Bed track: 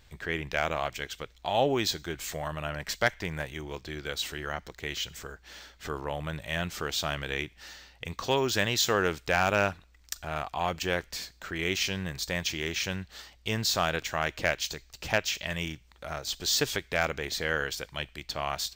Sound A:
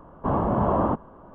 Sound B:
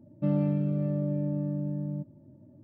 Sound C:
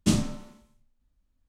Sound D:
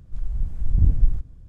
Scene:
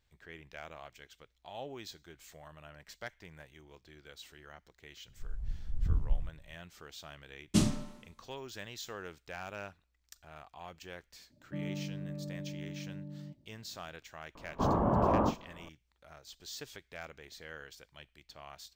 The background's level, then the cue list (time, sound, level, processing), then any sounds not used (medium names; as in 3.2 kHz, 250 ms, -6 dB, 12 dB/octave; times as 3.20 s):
bed track -18 dB
5.08 s: add D -12.5 dB
7.48 s: add C -4 dB
11.30 s: add B -12.5 dB
14.35 s: add A -5.5 dB + doubling 42 ms -10.5 dB